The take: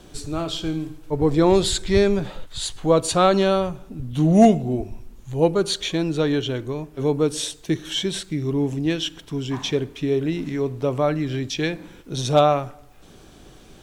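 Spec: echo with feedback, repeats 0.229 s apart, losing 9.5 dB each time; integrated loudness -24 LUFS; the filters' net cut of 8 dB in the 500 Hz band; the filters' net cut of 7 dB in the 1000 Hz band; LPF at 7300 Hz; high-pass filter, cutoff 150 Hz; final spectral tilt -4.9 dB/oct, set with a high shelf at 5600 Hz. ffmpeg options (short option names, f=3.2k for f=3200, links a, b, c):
-af "highpass=150,lowpass=7.3k,equalizer=f=500:t=o:g=-9,equalizer=f=1k:t=o:g=-6,highshelf=f=5.6k:g=-5,aecho=1:1:229|458|687|916:0.335|0.111|0.0365|0.012,volume=2.5dB"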